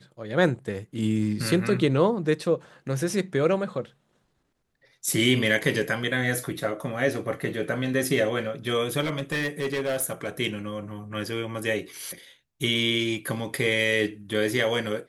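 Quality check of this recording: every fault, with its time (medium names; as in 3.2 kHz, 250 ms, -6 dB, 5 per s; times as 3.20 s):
9.00–10.29 s: clipped -22.5 dBFS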